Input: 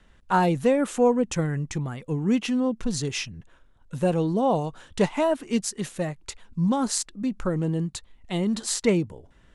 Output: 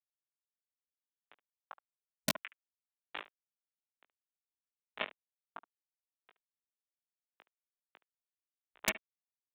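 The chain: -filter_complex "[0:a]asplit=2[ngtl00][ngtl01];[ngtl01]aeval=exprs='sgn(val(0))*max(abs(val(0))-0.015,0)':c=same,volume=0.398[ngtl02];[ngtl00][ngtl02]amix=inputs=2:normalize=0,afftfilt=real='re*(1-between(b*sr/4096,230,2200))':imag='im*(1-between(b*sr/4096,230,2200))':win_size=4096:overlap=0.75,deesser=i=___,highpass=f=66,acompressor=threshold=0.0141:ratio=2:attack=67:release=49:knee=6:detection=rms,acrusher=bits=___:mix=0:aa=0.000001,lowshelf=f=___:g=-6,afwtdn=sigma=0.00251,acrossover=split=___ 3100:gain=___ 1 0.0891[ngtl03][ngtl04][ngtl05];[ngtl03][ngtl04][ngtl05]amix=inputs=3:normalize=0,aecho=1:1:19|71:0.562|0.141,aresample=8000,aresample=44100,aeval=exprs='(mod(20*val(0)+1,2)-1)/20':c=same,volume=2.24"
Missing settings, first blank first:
0.55, 3, 250, 300, 0.2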